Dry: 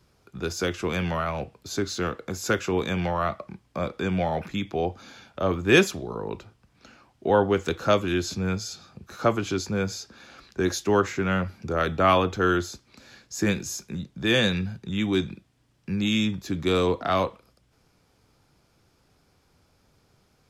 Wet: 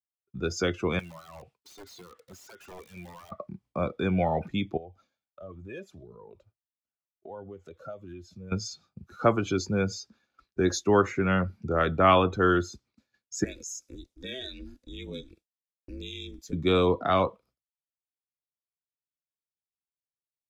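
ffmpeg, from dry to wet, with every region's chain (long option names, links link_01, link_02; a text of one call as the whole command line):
ffmpeg -i in.wav -filter_complex "[0:a]asettb=1/sr,asplit=3[link_01][link_02][link_03];[link_01]atrim=end=0.994[link_04];[link_02]atrim=start=0.99:end=3.32,asetpts=PTS-STARTPTS,afade=type=in:duration=0.004:curve=qsin,afade=type=out:start_time=2.326:duration=0.004:curve=qsin,tiltshelf=frequency=790:gain=-7.5,acompressor=threshold=-35dB:ratio=6:attack=3.2:release=140:knee=1:detection=peak,aeval=exprs='(mod(44.7*val(0)+1,2)-1)/44.7':channel_layout=same[link_05];[link_03]atrim=start=3.316[link_06];[link_04][link_05]acrossfade=duration=0.004:curve1=hsin:curve2=qsin[link_07];[link_07][link_06]acrossfade=duration=0.004:curve1=qsin:curve2=hsin,asettb=1/sr,asplit=3[link_08][link_09][link_10];[link_08]atrim=end=4.774[link_11];[link_09]atrim=start=4.77:end=8.52,asetpts=PTS-STARTPTS,afade=type=in:duration=0.004:curve=qsin,afade=type=out:start_time=3.746:duration=0.004:curve=qsin,equalizer=frequency=610:width_type=o:width=0.43:gain=5.5,acompressor=threshold=-37dB:ratio=3:attack=3.2:release=140:knee=1:detection=peak,flanger=delay=0.6:depth=1.3:regen=62:speed=1.5:shape=triangular[link_12];[link_10]atrim=start=8.516[link_13];[link_11][link_12]acrossfade=duration=0.004:curve1=hsin:curve2=qsin[link_14];[link_14][link_13]acrossfade=duration=0.004:curve1=qsin:curve2=hsin,asettb=1/sr,asplit=3[link_15][link_16][link_17];[link_15]atrim=end=13.444[link_18];[link_16]atrim=start=13.44:end=16.53,asetpts=PTS-STARTPTS,afade=type=in:duration=0.004:curve=qsin,afade=type=out:start_time=3.086:duration=0.004:curve=qsin,bass=frequency=250:gain=-9,treble=frequency=4000:gain=13,acompressor=threshold=-33dB:ratio=3:attack=3.2:release=140:knee=1:detection=peak,aeval=exprs='val(0)*sin(2*PI*130*n/s)':channel_layout=same[link_19];[link_17]atrim=start=16.526[link_20];[link_18][link_19]acrossfade=duration=0.004:curve1=hsin:curve2=qsin[link_21];[link_21][link_20]acrossfade=duration=0.004:curve1=qsin:curve2=hsin,afftdn=noise_reduction=17:noise_floor=-36,agate=range=-33dB:threshold=-53dB:ratio=3:detection=peak,bandreject=frequency=1600:width=20" out.wav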